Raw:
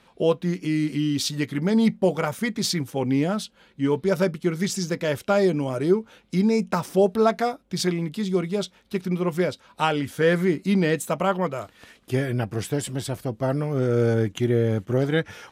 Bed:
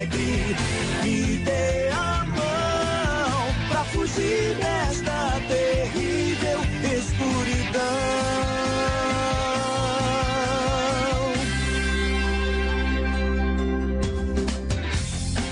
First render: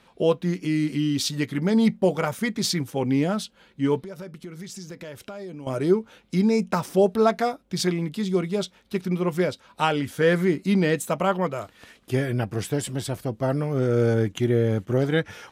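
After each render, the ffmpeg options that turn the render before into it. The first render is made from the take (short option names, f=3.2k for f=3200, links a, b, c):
-filter_complex "[0:a]asettb=1/sr,asplit=3[a][b][c];[a]atrim=end=4.024[d];[b]atrim=start=4.02:end=5.67,asetpts=PTS-STARTPTS,afade=t=in:d=0.004:c=qsin,afade=t=out:st=1.646:d=0.004:c=qsin,acompressor=threshold=-36dB:ratio=5:attack=3.2:release=140:knee=1:detection=peak[e];[c]atrim=start=5.666[f];[d][e]acrossfade=d=0.004:c1=hsin:c2=qsin[g];[g][f]acrossfade=d=0.004:c1=qsin:c2=hsin"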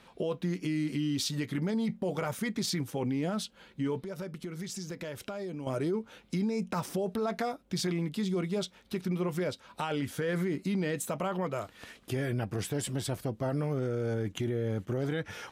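-af "alimiter=limit=-19dB:level=0:latency=1:release=23,acompressor=threshold=-36dB:ratio=1.5"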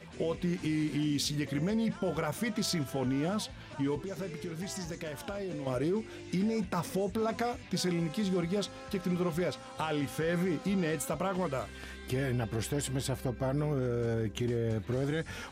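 -filter_complex "[1:a]volume=-23dB[a];[0:a][a]amix=inputs=2:normalize=0"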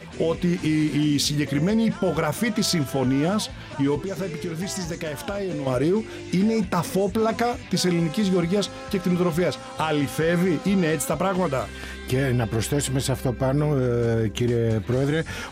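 -af "volume=9.5dB"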